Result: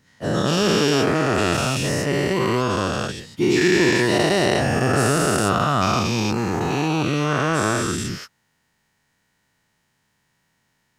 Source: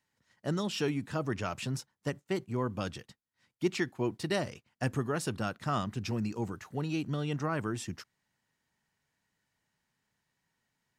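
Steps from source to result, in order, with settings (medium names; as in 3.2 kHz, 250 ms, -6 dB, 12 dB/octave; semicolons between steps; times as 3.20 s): every event in the spectrogram widened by 480 ms; trim +6 dB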